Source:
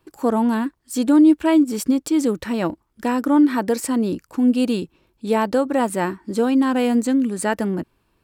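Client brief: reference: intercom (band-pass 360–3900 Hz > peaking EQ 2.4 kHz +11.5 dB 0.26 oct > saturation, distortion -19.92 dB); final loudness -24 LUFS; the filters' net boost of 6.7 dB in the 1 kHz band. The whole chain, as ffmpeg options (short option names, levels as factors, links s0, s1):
-af "highpass=360,lowpass=3900,equalizer=f=1000:t=o:g=8,equalizer=f=2400:t=o:w=0.26:g=11.5,asoftclip=threshold=0.422,volume=0.794"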